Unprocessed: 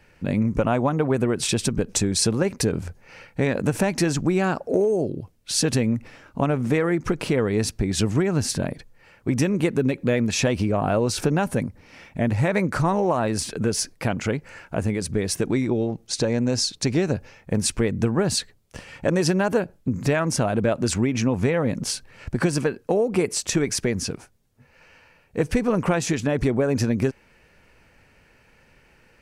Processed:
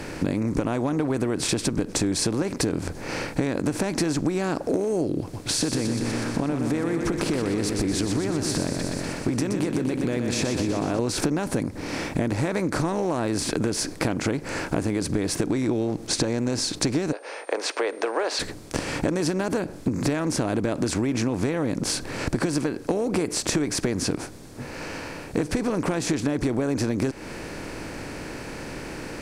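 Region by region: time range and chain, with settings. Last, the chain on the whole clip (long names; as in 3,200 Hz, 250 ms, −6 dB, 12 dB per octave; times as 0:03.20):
0:05.21–0:10.99: downward compressor 3 to 1, threshold −29 dBFS + repeating echo 123 ms, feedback 57%, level −9 dB
0:17.11–0:18.39: Butterworth high-pass 460 Hz 48 dB per octave + steady tone 8,800 Hz −38 dBFS + high-frequency loss of the air 230 metres
whole clip: compressor on every frequency bin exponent 0.6; parametric band 300 Hz +9.5 dB 0.35 octaves; downward compressor 6 to 1, threshold −23 dBFS; level +1.5 dB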